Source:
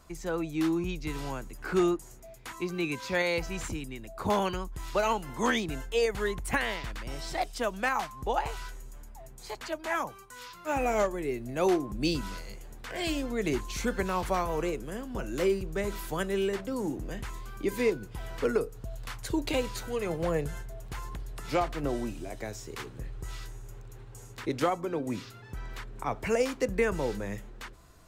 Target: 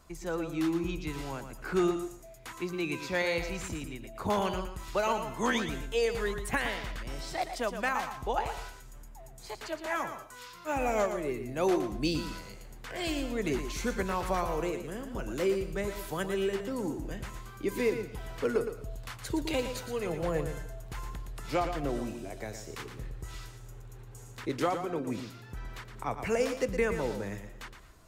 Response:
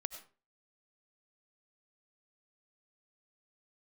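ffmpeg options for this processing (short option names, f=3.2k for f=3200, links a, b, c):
-filter_complex "[0:a]asplit=2[a][b];[1:a]atrim=start_sample=2205,adelay=116[c];[b][c]afir=irnorm=-1:irlink=0,volume=-7dB[d];[a][d]amix=inputs=2:normalize=0,volume=-2dB"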